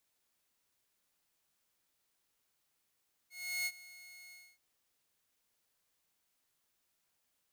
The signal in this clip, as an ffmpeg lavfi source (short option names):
-f lavfi -i "aevalsrc='0.0316*(2*mod(2170*t,1)-1)':d=1.282:s=44100,afade=t=in:d=0.361,afade=t=out:st=0.361:d=0.05:silence=0.106,afade=t=out:st=1.02:d=0.262"